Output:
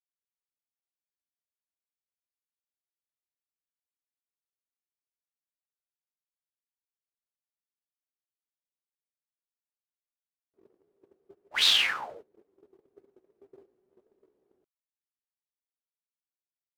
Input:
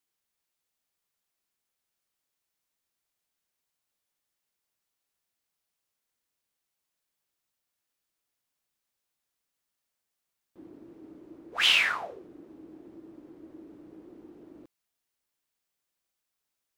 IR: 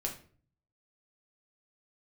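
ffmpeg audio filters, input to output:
-af "agate=range=-23dB:threshold=-45dB:ratio=16:detection=peak,asetrate=53981,aresample=44100,atempo=0.816958"

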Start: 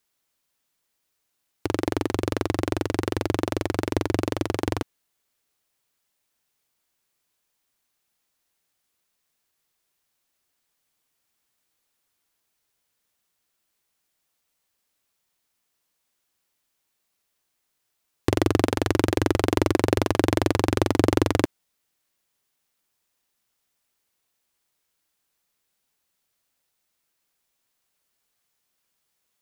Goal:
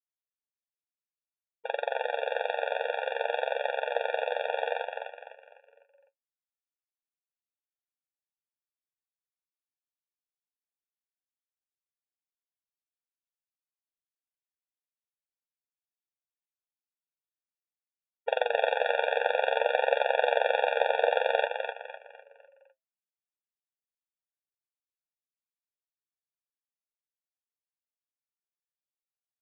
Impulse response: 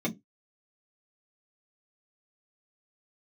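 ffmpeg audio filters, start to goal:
-filter_complex "[0:a]flanger=delay=6.9:depth=4.3:regen=56:speed=0.55:shape=triangular,agate=range=-33dB:threshold=-38dB:ratio=3:detection=peak,aresample=8000,aresample=44100,asplit=6[link_01][link_02][link_03][link_04][link_05][link_06];[link_02]adelay=252,afreqshift=-130,volume=-4.5dB[link_07];[link_03]adelay=504,afreqshift=-260,volume=-12.2dB[link_08];[link_04]adelay=756,afreqshift=-390,volume=-20dB[link_09];[link_05]adelay=1008,afreqshift=-520,volume=-27.7dB[link_10];[link_06]adelay=1260,afreqshift=-650,volume=-35.5dB[link_11];[link_01][link_07][link_08][link_09][link_10][link_11]amix=inputs=6:normalize=0,afftfilt=real='re*eq(mod(floor(b*sr/1024/470),2),1)':imag='im*eq(mod(floor(b*sr/1024/470),2),1)':win_size=1024:overlap=0.75,volume=6.5dB"

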